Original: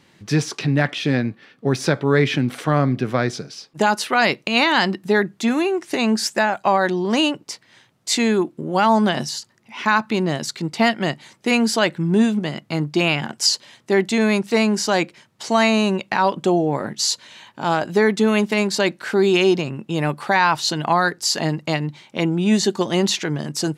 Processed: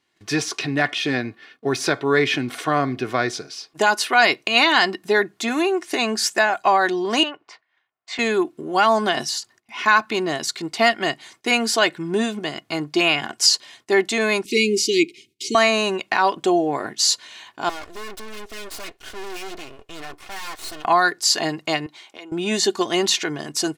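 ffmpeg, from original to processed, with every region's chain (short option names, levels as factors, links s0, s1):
-filter_complex "[0:a]asettb=1/sr,asplit=3[s0][s1][s2];[s0]atrim=end=7.234[s3];[s1]atrim=start=7.23:end=8.19,asetpts=PTS-STARTPTS,afade=t=in:d=0.004:c=qsin,afade=t=out:st=0.956:d=0.004:c=qsin,lowpass=5000,acrossover=split=580 2500:gain=0.2 1 0.158[s4][s5][s6];[s4][s5][s6]amix=inputs=3:normalize=0[s7];[s2]atrim=start=8.186[s8];[s3][s7]acrossfade=d=0.004:c1=hsin:c2=qsin[s9];[s9][s8]acrossfade=d=0.004:c1=qsin:c2=hsin,asettb=1/sr,asplit=3[s10][s11][s12];[s10]atrim=end=14.454[s13];[s11]atrim=start=14.45:end=15.55,asetpts=PTS-STARTPTS,afade=t=in:d=0.004:c=qsin,afade=t=out:st=1.096:d=0.004:c=qsin,asuperstop=centerf=960:order=20:qfactor=0.55,equalizer=f=660:t=o:w=2.3:g=11[s14];[s12]atrim=start=15.546[s15];[s13][s14]acrossfade=d=0.004:c1=hsin:c2=qsin[s16];[s16][s15]acrossfade=d=0.004:c1=qsin:c2=hsin,asettb=1/sr,asplit=3[s17][s18][s19];[s17]atrim=end=17.694[s20];[s18]atrim=start=17.69:end=20.85,asetpts=PTS-STARTPTS,afade=t=in:d=0.004:c=qsin,afade=t=out:st=3.156:d=0.004:c=qsin,flanger=delay=3.3:depth=2.2:regen=-29:speed=1:shape=sinusoidal,aeval=exprs='(tanh(25.1*val(0)+0.65)-tanh(0.65))/25.1':c=same,aeval=exprs='abs(val(0))':c=same[s21];[s19]atrim=start=20.846[s22];[s20][s21]acrossfade=d=0.004:c1=hsin:c2=qsin[s23];[s23][s22]acrossfade=d=0.004:c1=qsin:c2=hsin,asettb=1/sr,asplit=3[s24][s25][s26];[s24]atrim=end=21.864[s27];[s25]atrim=start=21.86:end=22.32,asetpts=PTS-STARTPTS,afade=t=in:d=0.004:c=qsin,afade=t=out:st=0.456:d=0.004:c=qsin,highpass=340,acompressor=threshold=0.0126:ratio=4:attack=3.2:release=140:knee=1:detection=peak[s28];[s26]atrim=start=22.316[s29];[s27][s28]acrossfade=d=0.004:c1=hsin:c2=qsin[s30];[s30][s29]acrossfade=d=0.004:c1=qsin:c2=hsin,agate=range=0.158:threshold=0.00282:ratio=16:detection=peak,lowshelf=f=360:g=-10,aecho=1:1:2.8:0.48,volume=1.19"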